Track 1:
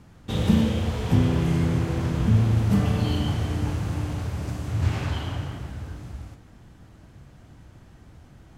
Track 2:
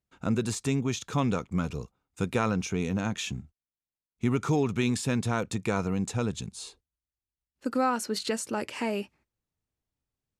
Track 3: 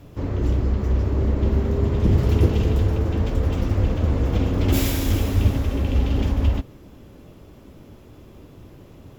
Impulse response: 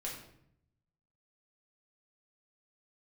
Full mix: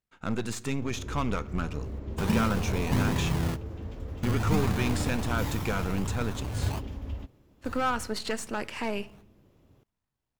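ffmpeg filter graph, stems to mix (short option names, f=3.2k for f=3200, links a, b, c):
-filter_complex "[0:a]equalizer=f=1k:w=2.2:g=11.5,acrusher=samples=22:mix=1:aa=0.000001:lfo=1:lforange=13.2:lforate=1.3,adelay=1800,volume=-7.5dB[a];[1:a]aeval=exprs='if(lt(val(0),0),0.447*val(0),val(0))':c=same,equalizer=f=1.6k:t=o:w=2.2:g=6,asoftclip=type=hard:threshold=-19.5dB,volume=-2.5dB,asplit=3[b][c][d];[c]volume=-14.5dB[e];[2:a]adelay=650,volume=-16.5dB[f];[d]apad=whole_len=457487[g];[a][g]sidechaingate=range=-33dB:threshold=-57dB:ratio=16:detection=peak[h];[3:a]atrim=start_sample=2205[i];[e][i]afir=irnorm=-1:irlink=0[j];[h][b][f][j]amix=inputs=4:normalize=0"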